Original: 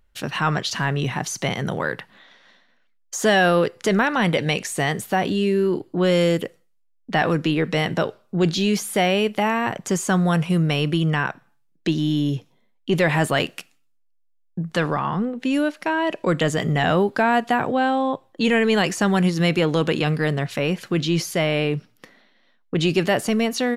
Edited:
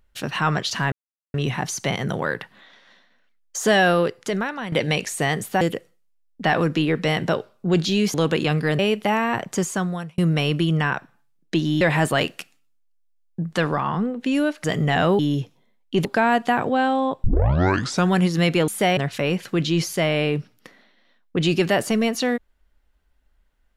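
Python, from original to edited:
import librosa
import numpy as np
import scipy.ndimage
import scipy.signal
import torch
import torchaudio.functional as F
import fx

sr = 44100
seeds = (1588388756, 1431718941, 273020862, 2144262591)

y = fx.edit(x, sr, fx.insert_silence(at_s=0.92, length_s=0.42),
    fx.fade_out_to(start_s=3.4, length_s=0.9, floor_db=-13.0),
    fx.cut(start_s=5.19, length_s=1.11),
    fx.swap(start_s=8.83, length_s=0.29, other_s=19.7, other_length_s=0.65),
    fx.fade_out_span(start_s=9.88, length_s=0.63),
    fx.move(start_s=12.14, length_s=0.86, to_s=17.07),
    fx.cut(start_s=15.83, length_s=0.69),
    fx.tape_start(start_s=18.26, length_s=0.88), tone=tone)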